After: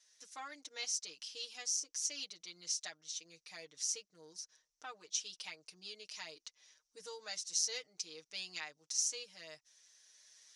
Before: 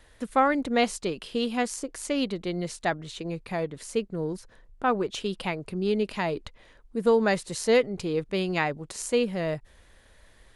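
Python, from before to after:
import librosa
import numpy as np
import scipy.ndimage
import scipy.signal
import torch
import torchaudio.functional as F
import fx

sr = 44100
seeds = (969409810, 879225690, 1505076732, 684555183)

y = fx.recorder_agc(x, sr, target_db=-14.0, rise_db_per_s=6.1, max_gain_db=30)
y = fx.bandpass_q(y, sr, hz=5800.0, q=7.9)
y = y + 0.95 * np.pad(y, (int(6.5 * sr / 1000.0), 0))[:len(y)]
y = y * librosa.db_to_amplitude(6.0)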